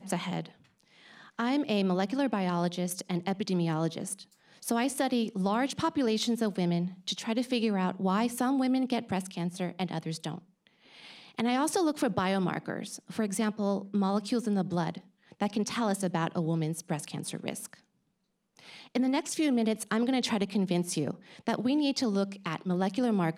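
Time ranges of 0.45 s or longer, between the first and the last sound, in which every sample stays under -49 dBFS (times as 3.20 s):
17.79–18.57 s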